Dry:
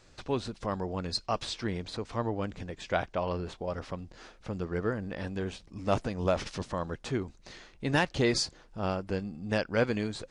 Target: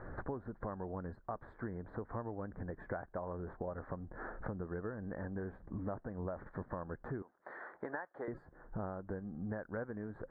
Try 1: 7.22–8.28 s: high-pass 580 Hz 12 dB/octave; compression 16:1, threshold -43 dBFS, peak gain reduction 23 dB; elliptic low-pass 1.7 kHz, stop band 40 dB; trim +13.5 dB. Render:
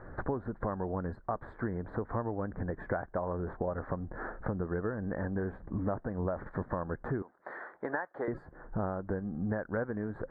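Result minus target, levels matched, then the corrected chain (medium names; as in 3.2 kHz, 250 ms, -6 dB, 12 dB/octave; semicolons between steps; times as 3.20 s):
compression: peak gain reduction -7.5 dB
7.22–8.28 s: high-pass 580 Hz 12 dB/octave; compression 16:1, threshold -51 dBFS, peak gain reduction 30.5 dB; elliptic low-pass 1.7 kHz, stop band 40 dB; trim +13.5 dB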